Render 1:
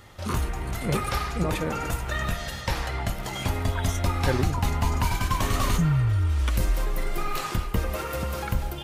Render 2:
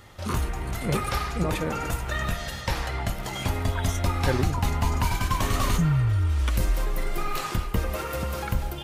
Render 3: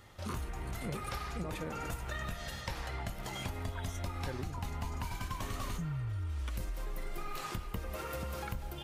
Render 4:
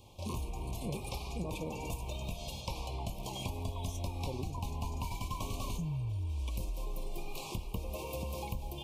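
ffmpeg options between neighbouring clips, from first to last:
ffmpeg -i in.wav -af anull out.wav
ffmpeg -i in.wav -af "acompressor=threshold=-27dB:ratio=6,volume=-7.5dB" out.wav
ffmpeg -i in.wav -af "asuperstop=centerf=1600:order=20:qfactor=1.4,volume=1dB" out.wav

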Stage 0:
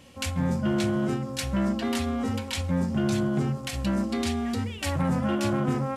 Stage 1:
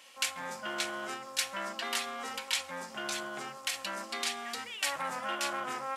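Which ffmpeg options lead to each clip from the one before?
ffmpeg -i in.wav -af "highpass=990,volume=1.5dB" out.wav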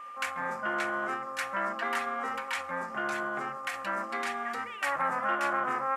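ffmpeg -i in.wav -af "aeval=exprs='val(0)+0.00398*sin(2*PI*1200*n/s)':channel_layout=same,highshelf=frequency=2500:width_type=q:width=1.5:gain=-13.5,volume=4.5dB" out.wav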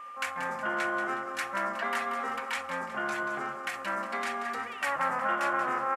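ffmpeg -i in.wav -af "aecho=1:1:183|366|549|732:0.316|0.133|0.0558|0.0234" out.wav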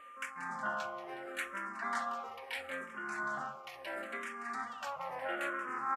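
ffmpeg -i in.wav -filter_complex "[0:a]tremolo=f=1.5:d=0.5,asplit=2[link_01][link_02];[link_02]afreqshift=-0.74[link_03];[link_01][link_03]amix=inputs=2:normalize=1,volume=-2.5dB" out.wav

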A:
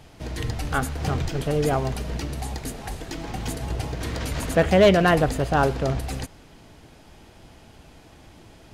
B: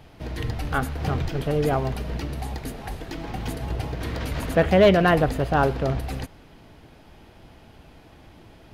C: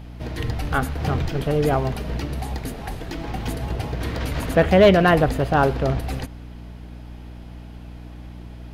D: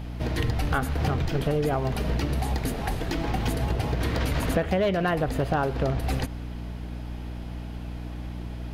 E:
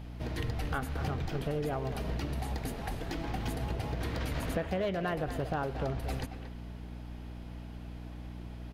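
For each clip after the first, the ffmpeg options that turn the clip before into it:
ffmpeg -i in.wav -af "equalizer=frequency=7500:width_type=o:width=1.1:gain=-9.5" out.wav
ffmpeg -i in.wav -af "aeval=exprs='val(0)+0.0112*(sin(2*PI*60*n/s)+sin(2*PI*2*60*n/s)/2+sin(2*PI*3*60*n/s)/3+sin(2*PI*4*60*n/s)/4+sin(2*PI*5*60*n/s)/5)':channel_layout=same,volume=2.5dB" out.wav
ffmpeg -i in.wav -af "acompressor=threshold=-24dB:ratio=10,volume=3dB" out.wav
ffmpeg -i in.wav -filter_complex "[0:a]asplit=2[link_01][link_02];[link_02]adelay=230,highpass=300,lowpass=3400,asoftclip=type=hard:threshold=-21dB,volume=-9dB[link_03];[link_01][link_03]amix=inputs=2:normalize=0,volume=-8.5dB" out.wav

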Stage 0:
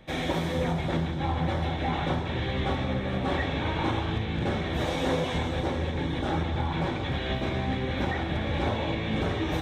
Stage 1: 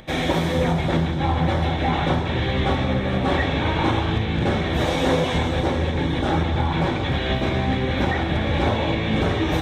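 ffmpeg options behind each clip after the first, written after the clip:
ffmpeg -i in.wav -af "acompressor=mode=upward:threshold=-50dB:ratio=2.5,volume=7dB" out.wav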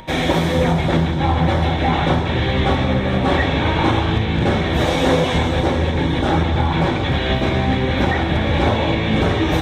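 ffmpeg -i in.wav -af "aeval=exprs='val(0)+0.00631*sin(2*PI*940*n/s)':channel_layout=same,volume=4dB" out.wav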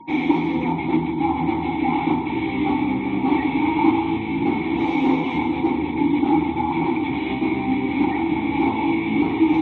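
ffmpeg -i in.wav -filter_complex "[0:a]afftfilt=real='re*gte(hypot(re,im),0.0178)':imag='im*gte(hypot(re,im),0.0178)':win_size=1024:overlap=0.75,asplit=3[link_01][link_02][link_03];[link_01]bandpass=frequency=300:width_type=q:width=8,volume=0dB[link_04];[link_02]bandpass=frequency=870:width_type=q:width=8,volume=-6dB[link_05];[link_03]bandpass=frequency=2240:width_type=q:width=8,volume=-9dB[link_06];[link_04][link_05][link_06]amix=inputs=3:normalize=0,volume=8.5dB" out.wav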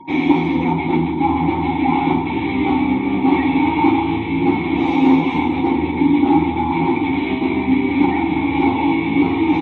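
ffmpeg -i in.wav -af "aecho=1:1:11|49:0.531|0.316,volume=3dB" out.wav

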